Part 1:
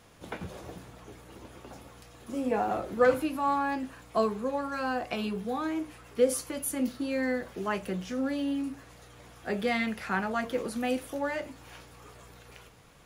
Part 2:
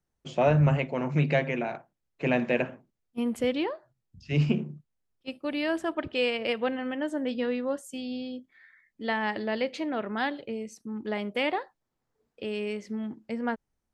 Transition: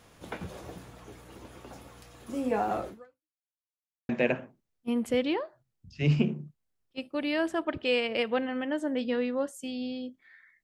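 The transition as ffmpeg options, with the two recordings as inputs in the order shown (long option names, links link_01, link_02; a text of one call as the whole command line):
ffmpeg -i cue0.wav -i cue1.wav -filter_complex "[0:a]apad=whole_dur=10.63,atrim=end=10.63,asplit=2[link_01][link_02];[link_01]atrim=end=3.4,asetpts=PTS-STARTPTS,afade=type=out:start_time=2.88:duration=0.52:curve=exp[link_03];[link_02]atrim=start=3.4:end=4.09,asetpts=PTS-STARTPTS,volume=0[link_04];[1:a]atrim=start=2.39:end=8.93,asetpts=PTS-STARTPTS,afade=type=in:duration=0.004:curve=hsin[link_05];[link_03][link_04][link_05]concat=n=3:v=0:a=1" out.wav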